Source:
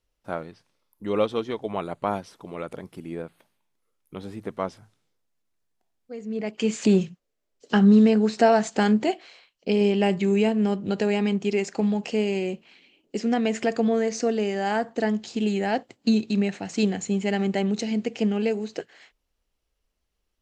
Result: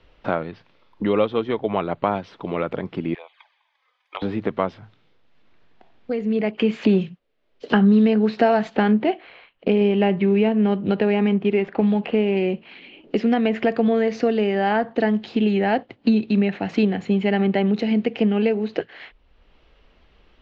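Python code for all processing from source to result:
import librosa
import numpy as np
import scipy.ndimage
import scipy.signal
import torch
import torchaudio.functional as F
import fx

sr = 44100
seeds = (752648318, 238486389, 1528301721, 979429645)

y = fx.chain(x, sr, fx.highpass(hz=860.0, slope=24),
    fx.notch_comb(f0_hz=1400.0),
    fx.env_flanger(rest_ms=4.3, full_db=-48.5), at=(3.14, 4.22))
y = fx.chain(y, sr, fx.median_filter(points=9),
    fx.lowpass(hz=4900.0, slope=12), at=(8.76, 12.37))
y = scipy.signal.sosfilt(scipy.signal.butter(4, 3500.0, 'lowpass', fs=sr, output='sos'), y)
y = fx.band_squash(y, sr, depth_pct=70)
y = F.gain(torch.from_numpy(y), 4.0).numpy()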